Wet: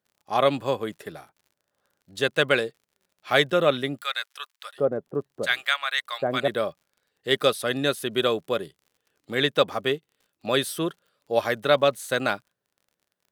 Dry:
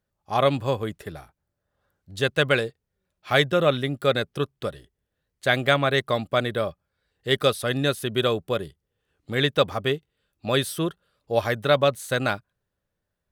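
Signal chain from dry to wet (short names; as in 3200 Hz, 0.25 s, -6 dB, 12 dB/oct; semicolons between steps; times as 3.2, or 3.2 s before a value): HPF 200 Hz 12 dB/oct; crackle 50/s -48 dBFS; 4.01–6.48 bands offset in time highs, lows 0.76 s, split 1000 Hz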